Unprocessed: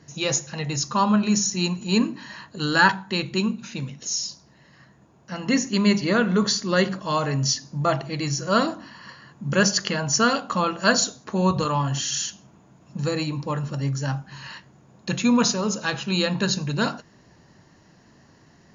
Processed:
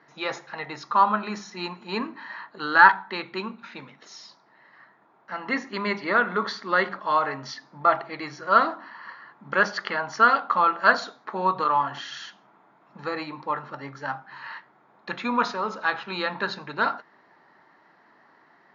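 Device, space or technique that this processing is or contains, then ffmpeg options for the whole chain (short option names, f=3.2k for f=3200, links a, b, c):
phone earpiece: -af "highpass=440,equalizer=f=520:t=q:w=4:g=-4,equalizer=f=870:t=q:w=4:g=5,equalizer=f=1.3k:t=q:w=4:g=7,equalizer=f=2k:t=q:w=4:g=4,equalizer=f=2.8k:t=q:w=4:g=-9,lowpass=f=3.4k:w=0.5412,lowpass=f=3.4k:w=1.3066"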